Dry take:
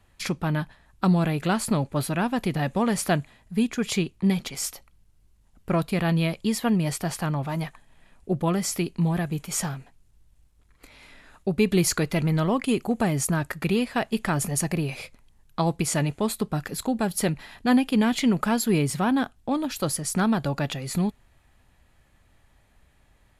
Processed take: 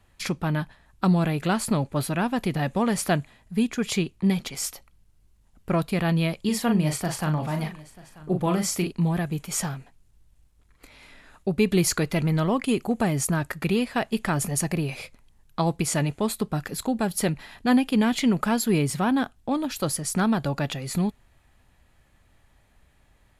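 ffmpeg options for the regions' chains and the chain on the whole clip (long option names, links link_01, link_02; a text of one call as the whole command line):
ffmpeg -i in.wav -filter_complex "[0:a]asettb=1/sr,asplit=3[link_01][link_02][link_03];[link_01]atrim=end=6.414[link_04];[link_02]atrim=start=6.41:end=8.92,asetpts=PTS-STARTPTS,afade=type=in:duration=0.004:curve=qsin,afade=type=out:start_time=2.506:duration=0.004:curve=qsin,asplit=2[link_05][link_06];[link_06]adelay=39,volume=-6dB[link_07];[link_05][link_07]amix=inputs=2:normalize=0,atrim=end_sample=110691,aecho=1:1:938:0.0944,atrim=end_sample=110691[link_08];[link_03]atrim=start=8.916[link_09];[link_04][link_08]acrossfade=duration=0.004:curve1=hsin:curve2=qsin[link_10];[link_10][link_09]acrossfade=duration=0.004:curve1=qsin:curve2=hsin" out.wav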